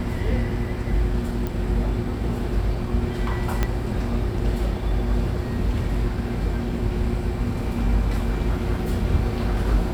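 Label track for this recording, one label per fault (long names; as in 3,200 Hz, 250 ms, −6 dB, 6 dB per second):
1.470000	1.470000	click
3.630000	3.630000	click −8 dBFS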